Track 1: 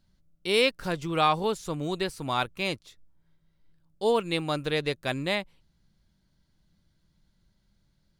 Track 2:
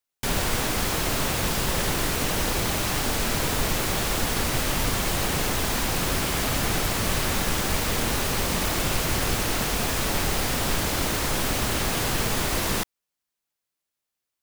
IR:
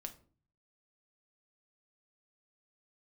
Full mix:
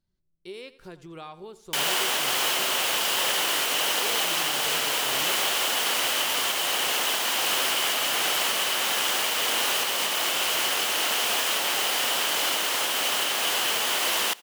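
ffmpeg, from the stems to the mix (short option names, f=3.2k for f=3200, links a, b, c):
-filter_complex "[0:a]equalizer=f=380:w=7.7:g=12.5,acompressor=threshold=-27dB:ratio=3,volume=-12dB,asplit=2[a][b];[b]volume=-16.5dB[c];[1:a]highpass=590,equalizer=f=3k:w=5.4:g=10,alimiter=limit=-16.5dB:level=0:latency=1:release=376,adelay=1500,volume=2.5dB,asplit=2[d][e];[e]volume=-24dB[f];[c][f]amix=inputs=2:normalize=0,aecho=0:1:86|172|258|344|430|516:1|0.41|0.168|0.0689|0.0283|0.0116[g];[a][d][g]amix=inputs=3:normalize=0"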